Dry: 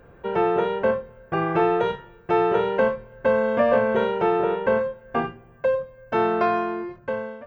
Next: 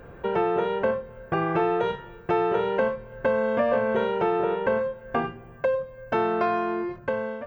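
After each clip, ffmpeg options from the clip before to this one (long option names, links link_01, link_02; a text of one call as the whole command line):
ffmpeg -i in.wav -af "acompressor=threshold=-32dB:ratio=2,volume=5dB" out.wav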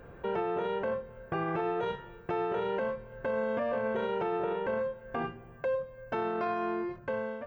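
ffmpeg -i in.wav -af "alimiter=limit=-19dB:level=0:latency=1:release=16,volume=-5dB" out.wav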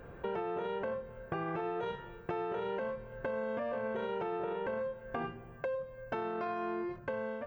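ffmpeg -i in.wav -af "acompressor=threshold=-33dB:ratio=6" out.wav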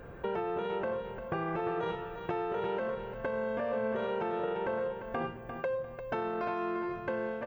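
ffmpeg -i in.wav -af "aecho=1:1:348|696|1044:0.398|0.115|0.0335,volume=2.5dB" out.wav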